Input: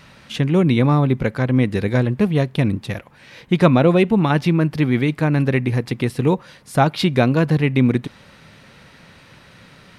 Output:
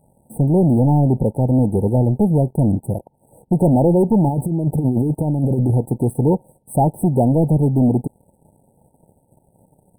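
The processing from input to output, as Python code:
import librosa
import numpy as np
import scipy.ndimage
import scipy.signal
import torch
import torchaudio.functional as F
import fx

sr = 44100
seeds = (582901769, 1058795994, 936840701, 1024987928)

y = fx.over_compress(x, sr, threshold_db=-20.0, ratio=-0.5, at=(4.27, 5.71))
y = fx.leveller(y, sr, passes=3)
y = fx.brickwall_bandstop(y, sr, low_hz=940.0, high_hz=7900.0)
y = y * 10.0 ** (-6.0 / 20.0)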